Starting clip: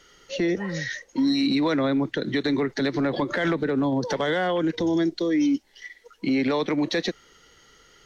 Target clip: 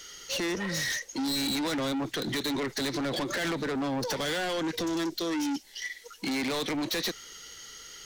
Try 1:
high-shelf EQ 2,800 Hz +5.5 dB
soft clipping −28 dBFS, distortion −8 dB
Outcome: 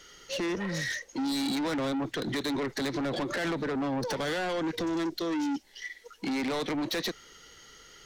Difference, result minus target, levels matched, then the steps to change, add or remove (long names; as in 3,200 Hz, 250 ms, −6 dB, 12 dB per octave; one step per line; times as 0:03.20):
4,000 Hz band −3.5 dB
change: high-shelf EQ 2,800 Hz +17 dB